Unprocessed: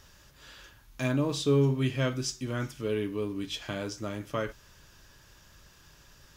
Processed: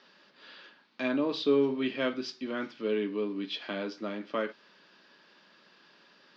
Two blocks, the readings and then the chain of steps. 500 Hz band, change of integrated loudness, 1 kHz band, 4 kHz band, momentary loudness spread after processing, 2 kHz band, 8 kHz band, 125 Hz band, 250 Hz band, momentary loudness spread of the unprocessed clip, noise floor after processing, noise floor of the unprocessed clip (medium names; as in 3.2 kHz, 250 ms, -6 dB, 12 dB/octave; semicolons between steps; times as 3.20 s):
+1.0 dB, -1.0 dB, 0.0 dB, -0.5 dB, 12 LU, +0.5 dB, under -15 dB, -18.0 dB, 0.0 dB, 12 LU, -62 dBFS, -58 dBFS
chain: Chebyshev band-pass 200–4600 Hz, order 4; trim +1 dB